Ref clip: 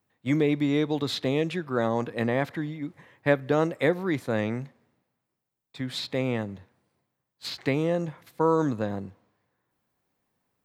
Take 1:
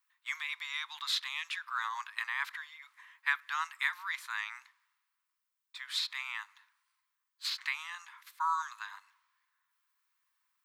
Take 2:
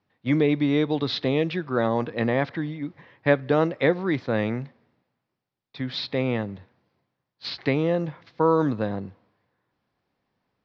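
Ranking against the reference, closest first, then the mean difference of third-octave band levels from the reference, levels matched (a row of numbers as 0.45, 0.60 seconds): 2, 1; 1.5, 18.5 decibels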